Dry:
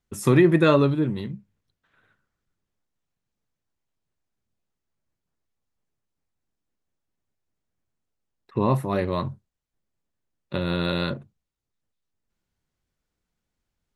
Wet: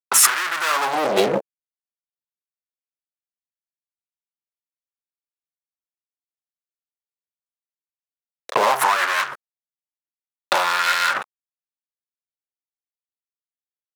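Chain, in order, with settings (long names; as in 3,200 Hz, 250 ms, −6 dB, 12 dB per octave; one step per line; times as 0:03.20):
fuzz pedal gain 38 dB, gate −47 dBFS
compressor whose output falls as the input rises −18 dBFS, ratio −0.5
auto-filter high-pass sine 0.57 Hz 470–1,500 Hz
level +3.5 dB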